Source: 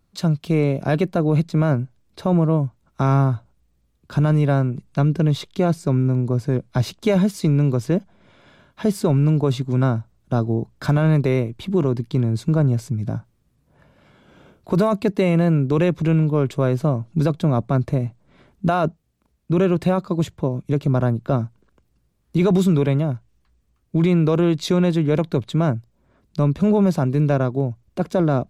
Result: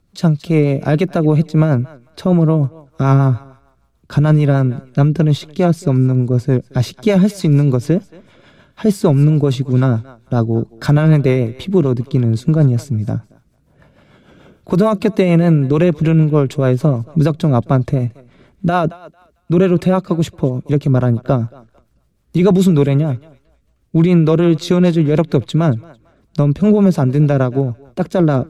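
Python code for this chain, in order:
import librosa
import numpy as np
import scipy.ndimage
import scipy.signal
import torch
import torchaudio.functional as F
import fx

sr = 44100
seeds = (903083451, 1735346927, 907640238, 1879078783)

y = fx.echo_thinned(x, sr, ms=224, feedback_pct=24, hz=550.0, wet_db=-19.0)
y = fx.rotary(y, sr, hz=6.7)
y = y * librosa.db_to_amplitude(7.0)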